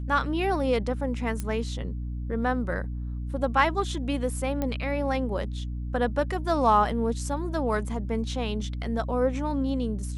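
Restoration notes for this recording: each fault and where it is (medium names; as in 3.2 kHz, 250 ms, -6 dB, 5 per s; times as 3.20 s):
hum 60 Hz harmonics 5 -32 dBFS
1.40 s: pop -17 dBFS
4.62 s: pop -16 dBFS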